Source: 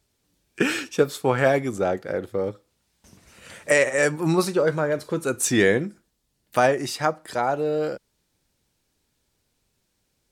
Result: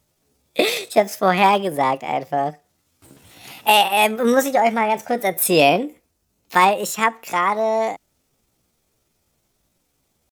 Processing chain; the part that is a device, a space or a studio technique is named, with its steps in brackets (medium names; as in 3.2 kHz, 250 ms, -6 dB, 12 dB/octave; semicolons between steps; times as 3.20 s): chipmunk voice (pitch shift +6.5 st); trim +4.5 dB